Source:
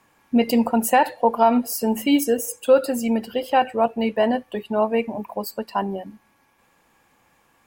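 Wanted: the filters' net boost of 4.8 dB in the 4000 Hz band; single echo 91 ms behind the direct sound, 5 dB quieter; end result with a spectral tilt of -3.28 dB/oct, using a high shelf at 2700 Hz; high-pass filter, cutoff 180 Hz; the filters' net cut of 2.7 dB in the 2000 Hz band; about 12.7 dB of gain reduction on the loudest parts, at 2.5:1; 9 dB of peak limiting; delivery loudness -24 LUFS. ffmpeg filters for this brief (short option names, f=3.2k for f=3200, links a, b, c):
-af "highpass=180,equalizer=f=2k:t=o:g=-8.5,highshelf=f=2.7k:g=8,equalizer=f=4k:t=o:g=4,acompressor=threshold=-31dB:ratio=2.5,alimiter=limit=-24dB:level=0:latency=1,aecho=1:1:91:0.562,volume=9dB"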